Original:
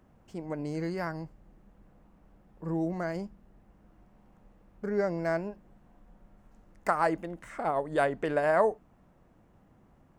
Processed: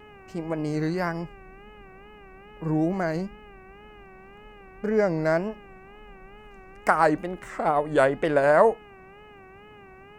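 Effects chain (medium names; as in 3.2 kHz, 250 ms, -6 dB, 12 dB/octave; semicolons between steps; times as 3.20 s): mains buzz 400 Hz, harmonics 7, -56 dBFS -4 dB/octave; wow and flutter 100 cents; trim +6.5 dB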